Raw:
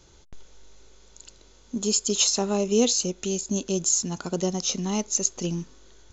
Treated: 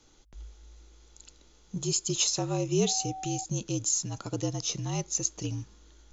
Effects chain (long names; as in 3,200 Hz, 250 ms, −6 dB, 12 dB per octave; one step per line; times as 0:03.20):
frequency shifter −55 Hz
0:02.86–0:03.43: steady tone 760 Hz −32 dBFS
level −5 dB